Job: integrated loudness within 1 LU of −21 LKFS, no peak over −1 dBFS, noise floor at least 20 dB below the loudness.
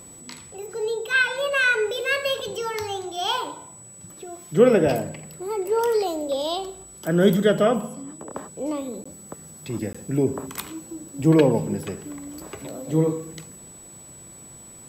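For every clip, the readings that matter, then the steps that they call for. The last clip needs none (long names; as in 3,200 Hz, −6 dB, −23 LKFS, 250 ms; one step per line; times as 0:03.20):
number of dropouts 2; longest dropout 15 ms; interfering tone 7,900 Hz; level of the tone −43 dBFS; integrated loudness −23.0 LKFS; sample peak −4.5 dBFS; target loudness −21.0 LKFS
→ repair the gap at 0:09.04/0:09.93, 15 ms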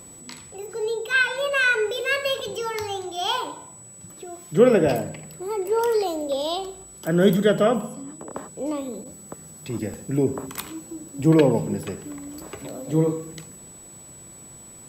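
number of dropouts 0; interfering tone 7,900 Hz; level of the tone −43 dBFS
→ notch filter 7,900 Hz, Q 30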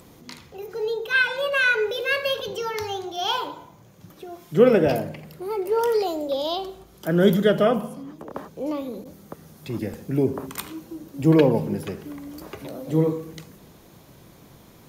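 interfering tone none found; integrated loudness −23.0 LKFS; sample peak −4.5 dBFS; target loudness −21.0 LKFS
→ level +2 dB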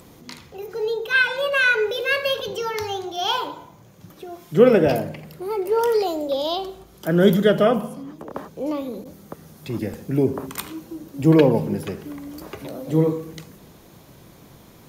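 integrated loudness −21.0 LKFS; sample peak −2.5 dBFS; background noise floor −49 dBFS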